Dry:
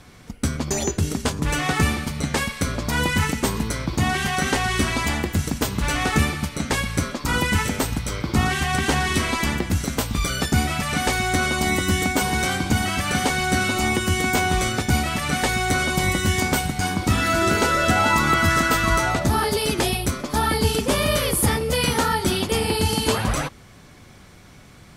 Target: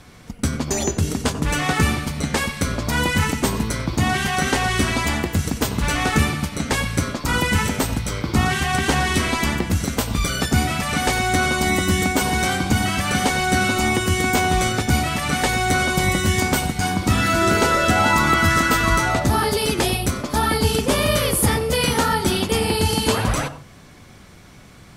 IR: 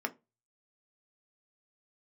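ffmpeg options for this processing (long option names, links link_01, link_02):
-filter_complex "[0:a]asplit=2[link_01][link_02];[1:a]atrim=start_sample=2205,asetrate=22932,aresample=44100,adelay=92[link_03];[link_02][link_03]afir=irnorm=-1:irlink=0,volume=-20.5dB[link_04];[link_01][link_04]amix=inputs=2:normalize=0,volume=1.5dB"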